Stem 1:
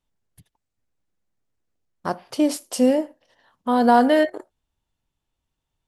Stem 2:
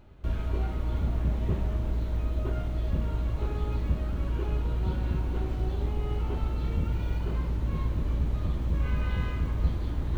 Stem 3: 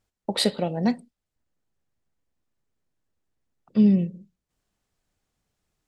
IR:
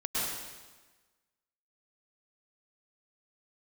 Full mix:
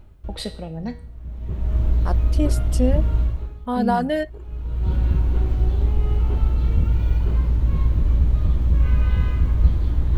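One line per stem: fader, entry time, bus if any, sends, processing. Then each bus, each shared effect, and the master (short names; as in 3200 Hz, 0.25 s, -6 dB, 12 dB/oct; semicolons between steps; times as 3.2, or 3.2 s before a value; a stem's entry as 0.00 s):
-5.0 dB, 0.00 s, no send, reverb removal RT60 2 s
+2.0 dB, 0.00 s, no send, auto duck -21 dB, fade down 0.45 s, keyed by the third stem
0.0 dB, 0.00 s, no send, requantised 12-bit, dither triangular; resonator 160 Hz, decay 0.51 s, harmonics all, mix 70%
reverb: off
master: low shelf 110 Hz +11 dB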